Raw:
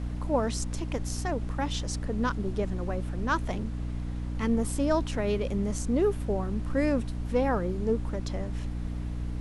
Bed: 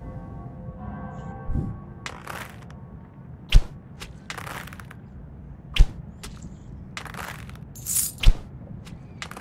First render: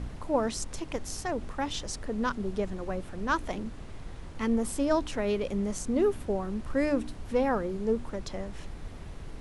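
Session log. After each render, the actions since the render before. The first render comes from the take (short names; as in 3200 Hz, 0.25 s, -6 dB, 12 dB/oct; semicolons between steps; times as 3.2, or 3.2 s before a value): de-hum 60 Hz, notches 5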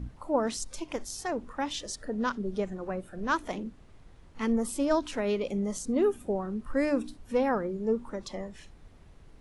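noise print and reduce 12 dB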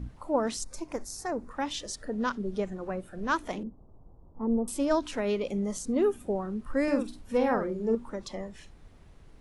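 0.64–1.51 bell 3100 Hz -15 dB 0.59 oct; 3.63–4.68 steep low-pass 1000 Hz; 6.83–7.95 doubler 49 ms -5.5 dB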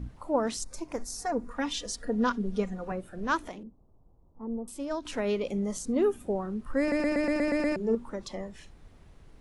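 0.98–2.92 comb 4.2 ms, depth 68%; 3.49–5.05 gain -7.5 dB; 6.8 stutter in place 0.12 s, 8 plays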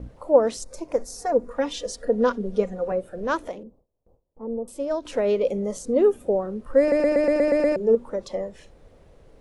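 gate with hold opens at -49 dBFS; bell 520 Hz +14.5 dB 0.7 oct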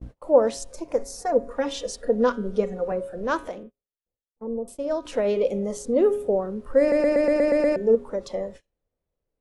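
de-hum 137.9 Hz, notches 29; gate -40 dBFS, range -31 dB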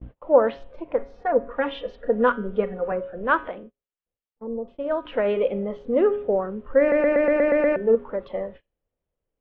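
elliptic low-pass 3200 Hz, stop band 80 dB; dynamic EQ 1500 Hz, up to +8 dB, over -41 dBFS, Q 1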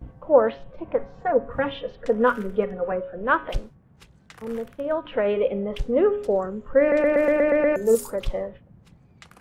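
add bed -12.5 dB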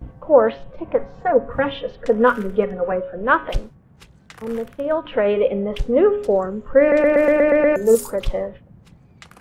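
gain +4.5 dB; limiter -2 dBFS, peak gain reduction 1.5 dB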